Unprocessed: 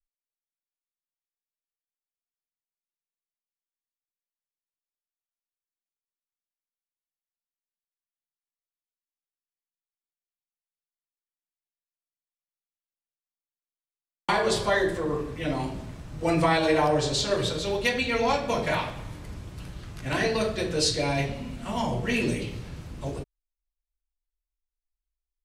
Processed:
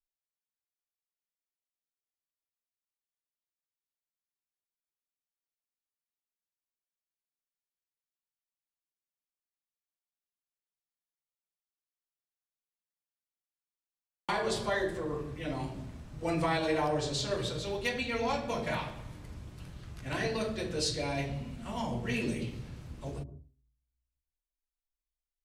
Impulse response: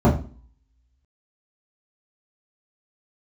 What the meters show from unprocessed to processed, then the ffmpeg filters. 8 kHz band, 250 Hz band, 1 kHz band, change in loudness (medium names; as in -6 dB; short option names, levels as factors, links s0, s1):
-7.5 dB, -6.5 dB, -7.5 dB, -7.0 dB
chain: -filter_complex "[0:a]asoftclip=type=hard:threshold=0.224,asplit=2[s0][s1];[1:a]atrim=start_sample=2205,adelay=111[s2];[s1][s2]afir=irnorm=-1:irlink=0,volume=0.00944[s3];[s0][s3]amix=inputs=2:normalize=0,volume=0.422"